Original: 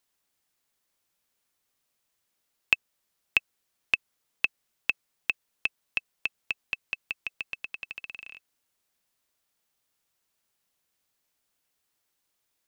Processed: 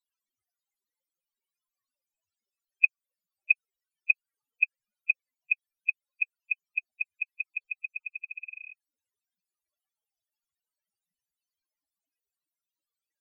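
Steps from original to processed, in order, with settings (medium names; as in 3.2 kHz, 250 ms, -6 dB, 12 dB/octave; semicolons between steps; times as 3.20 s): speed mistake 25 fps video run at 24 fps; loudest bins only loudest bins 8; trim +2.5 dB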